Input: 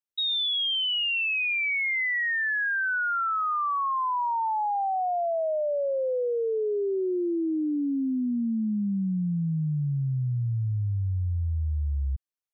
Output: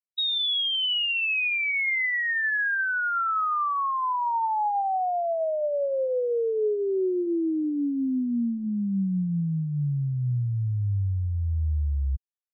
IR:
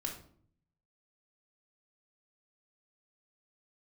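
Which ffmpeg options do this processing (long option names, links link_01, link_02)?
-filter_complex "[0:a]asplit=2[link_01][link_02];[1:a]atrim=start_sample=2205,afade=type=out:start_time=0.18:duration=0.01,atrim=end_sample=8379,asetrate=61740,aresample=44100[link_03];[link_02][link_03]afir=irnorm=-1:irlink=0,volume=-11.5dB[link_04];[link_01][link_04]amix=inputs=2:normalize=0,afftfilt=real='re*gte(hypot(re,im),0.2)':imag='im*gte(hypot(re,im),0.2)':win_size=1024:overlap=0.75"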